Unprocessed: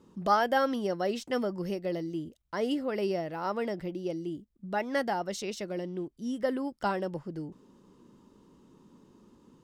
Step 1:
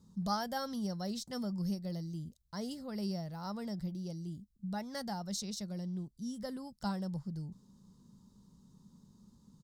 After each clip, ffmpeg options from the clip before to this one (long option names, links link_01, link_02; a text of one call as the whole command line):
ffmpeg -i in.wav -af "firequalizer=gain_entry='entry(200,0);entry(300,-19);entry(830,-12);entry(2700,-20);entry(4000,-1)':delay=0.05:min_phase=1,volume=2dB" out.wav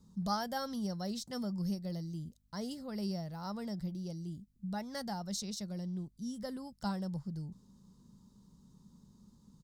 ffmpeg -i in.wav -af "aeval=exprs='val(0)+0.000251*(sin(2*PI*50*n/s)+sin(2*PI*2*50*n/s)/2+sin(2*PI*3*50*n/s)/3+sin(2*PI*4*50*n/s)/4+sin(2*PI*5*50*n/s)/5)':channel_layout=same" out.wav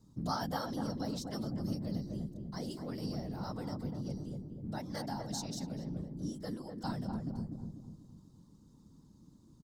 ffmpeg -i in.wav -filter_complex "[0:a]afftfilt=real='hypot(re,im)*cos(2*PI*random(0))':imag='hypot(re,im)*sin(2*PI*random(1))':win_size=512:overlap=0.75,asplit=2[link_01][link_02];[link_02]adelay=246,lowpass=frequency=870:poles=1,volume=-3dB,asplit=2[link_03][link_04];[link_04]adelay=246,lowpass=frequency=870:poles=1,volume=0.48,asplit=2[link_05][link_06];[link_06]adelay=246,lowpass=frequency=870:poles=1,volume=0.48,asplit=2[link_07][link_08];[link_08]adelay=246,lowpass=frequency=870:poles=1,volume=0.48,asplit=2[link_09][link_10];[link_10]adelay=246,lowpass=frequency=870:poles=1,volume=0.48,asplit=2[link_11][link_12];[link_12]adelay=246,lowpass=frequency=870:poles=1,volume=0.48[link_13];[link_01][link_03][link_05][link_07][link_09][link_11][link_13]amix=inputs=7:normalize=0,volume=4.5dB" out.wav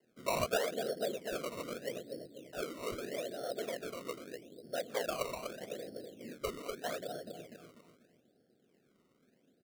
ffmpeg -i in.wav -af "highpass=frequency=490:width_type=q:width=0.5412,highpass=frequency=490:width_type=q:width=1.307,lowpass=frequency=2100:width_type=q:width=0.5176,lowpass=frequency=2100:width_type=q:width=0.7071,lowpass=frequency=2100:width_type=q:width=1.932,afreqshift=-66,asuperstop=centerf=1000:order=8:qfactor=1.3,acrusher=samples=18:mix=1:aa=0.000001:lfo=1:lforange=18:lforate=0.8,volume=10.5dB" out.wav